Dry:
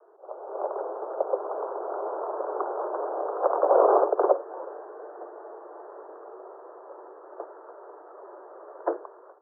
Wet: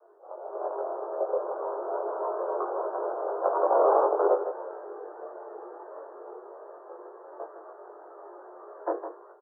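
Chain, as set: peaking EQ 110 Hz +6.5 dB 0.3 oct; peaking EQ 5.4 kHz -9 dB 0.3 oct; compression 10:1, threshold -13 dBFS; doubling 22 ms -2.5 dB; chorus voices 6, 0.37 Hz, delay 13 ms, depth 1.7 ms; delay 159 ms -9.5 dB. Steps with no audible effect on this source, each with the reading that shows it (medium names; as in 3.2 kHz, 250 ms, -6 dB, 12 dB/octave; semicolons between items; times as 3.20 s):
peaking EQ 110 Hz: input has nothing below 290 Hz; peaking EQ 5.4 kHz: input has nothing above 1.5 kHz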